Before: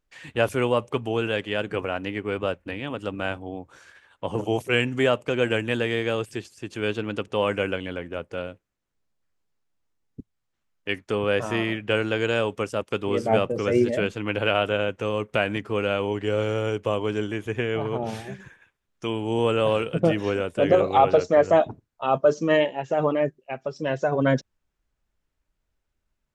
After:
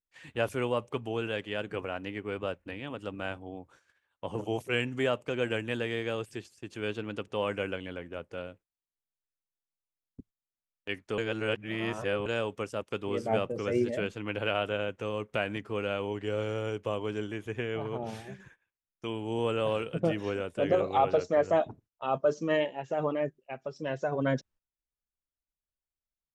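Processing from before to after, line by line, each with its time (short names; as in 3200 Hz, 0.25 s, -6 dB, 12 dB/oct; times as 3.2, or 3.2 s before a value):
11.18–12.26 reverse
whole clip: gate -48 dBFS, range -14 dB; gain -7.5 dB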